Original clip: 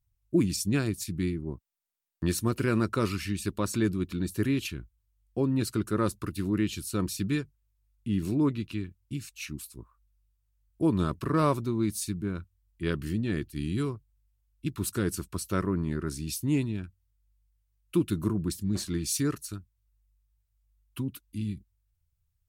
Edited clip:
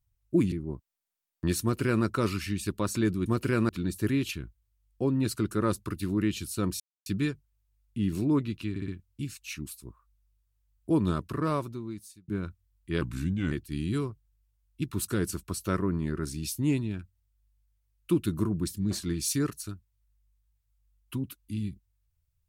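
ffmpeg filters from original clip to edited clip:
-filter_complex "[0:a]asplit=11[a][b][c][d][e][f][g][h][i][j][k];[a]atrim=end=0.522[l];[b]atrim=start=1.308:end=4.052[m];[c]atrim=start=2.408:end=2.842[n];[d]atrim=start=4.048:end=7.16,asetpts=PTS-STARTPTS,afade=t=out:st=3.108:d=0.004:c=hsin,apad=pad_dur=0.26[o];[e]atrim=start=7.16:end=8.862,asetpts=PTS-STARTPTS,afade=t=in:d=0.004:c=hsin[p];[f]atrim=start=8.798:end=8.862[q];[g]atrim=start=8.798:end=8.862[r];[h]atrim=start=8.798:end=12.2,asetpts=PTS-STARTPTS,afade=t=out:st=2.152:d=1.25[s];[i]atrim=start=12.2:end=12.934,asetpts=PTS-STARTPTS,afade=t=in:d=0.004:c=hsin[t];[j]atrim=start=12.93:end=13.36,asetpts=PTS-STARTPTS,asetrate=37485,aresample=44100,atrim=end_sample=22309,asetpts=PTS-STARTPTS[u];[k]atrim=start=13.356[v];[l][m]acrossfade=d=0.004:c1=hsin:c2=hsin[w];[w][n]acrossfade=d=0.004:c1=hsin:c2=hsin[x];[o][p]concat=n=2:v=0:a=1[y];[x][y]acrossfade=d=0.004:c1=hsin:c2=hsin[z];[z][q]acrossfade=d=0.004:c1=hsin:c2=hsin[aa];[aa][r]acrossfade=d=0.004:c1=hsin:c2=hsin[ab];[s][t]concat=n=2:v=0:a=1[ac];[ab][ac]acrossfade=d=0.004:c1=hsin:c2=hsin[ad];[ad][u]acrossfade=d=0.004:c1=hsin:c2=hsin[ae];[ae][v]acrossfade=d=0.004:c1=hsin:c2=hsin"

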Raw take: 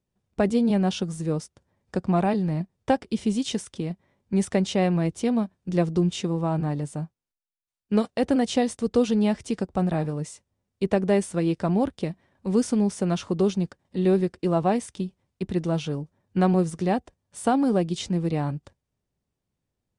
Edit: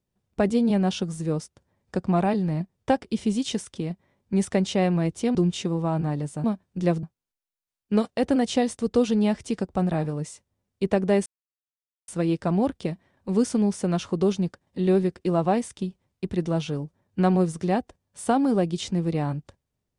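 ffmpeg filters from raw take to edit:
-filter_complex "[0:a]asplit=5[a][b][c][d][e];[a]atrim=end=5.352[f];[b]atrim=start=5.938:end=7.032[g];[c]atrim=start=5.348:end=5.942[h];[d]atrim=start=7.028:end=11.26,asetpts=PTS-STARTPTS,afade=t=out:st=4.228:d=0.004:c=hsin,apad=pad_dur=0.82[i];[e]atrim=start=11.26,asetpts=PTS-STARTPTS,afade=t=in:d=0.004:c=hsin[j];[f][g]acrossfade=d=0.004:c1=hsin:c2=hsin[k];[k][h]acrossfade=d=0.004:c1=hsin:c2=hsin[l];[i][j]concat=n=2:v=0:a=1[m];[l][m]acrossfade=d=0.004:c1=hsin:c2=hsin"

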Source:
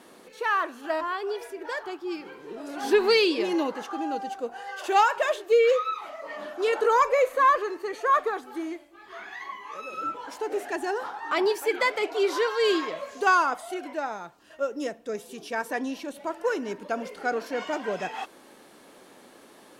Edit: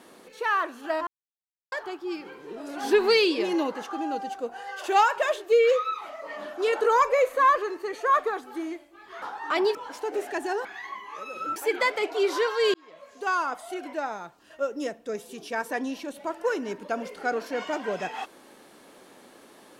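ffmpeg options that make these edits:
-filter_complex "[0:a]asplit=8[a][b][c][d][e][f][g][h];[a]atrim=end=1.07,asetpts=PTS-STARTPTS,afade=t=out:st=1.066:d=0.004:c=hsin[i];[b]atrim=start=1.07:end=1.72,asetpts=PTS-STARTPTS,volume=0[j];[c]atrim=start=1.72:end=9.222,asetpts=PTS-STARTPTS,afade=t=in:d=0.004:c=hsin[k];[d]atrim=start=11.028:end=11.562[l];[e]atrim=start=10.128:end=11.032[m];[f]atrim=start=9.218:end=10.132[n];[g]atrim=start=11.558:end=12.74,asetpts=PTS-STARTPTS,afade=t=out:st=1.178:d=0.004:c=hsin[o];[h]atrim=start=12.74,asetpts=PTS-STARTPTS,afade=t=in:d=1.14[p];[i][j][k]concat=n=3:v=0:a=1[q];[q][l]acrossfade=d=0.004:c1=hsin:c2=hsin[r];[r][m]acrossfade=d=0.004:c1=hsin:c2=hsin[s];[s][n]acrossfade=d=0.004:c1=hsin:c2=hsin[t];[o][p]concat=n=2:v=0:a=1[u];[t][u]acrossfade=d=0.004:c1=hsin:c2=hsin"

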